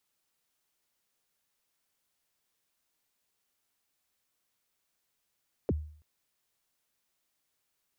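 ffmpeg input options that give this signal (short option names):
-f lavfi -i "aevalsrc='0.075*pow(10,-3*t/0.52)*sin(2*PI*(560*0.034/log(76/560)*(exp(log(76/560)*min(t,0.034)/0.034)-1)+76*max(t-0.034,0)))':d=0.33:s=44100"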